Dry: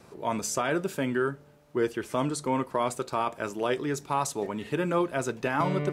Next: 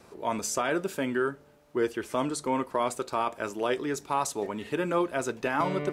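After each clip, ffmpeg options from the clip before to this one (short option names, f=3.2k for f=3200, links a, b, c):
-af "equalizer=f=140:t=o:w=0.79:g=-7"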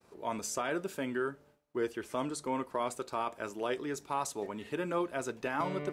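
-af "agate=range=-33dB:threshold=-51dB:ratio=3:detection=peak,volume=-6dB"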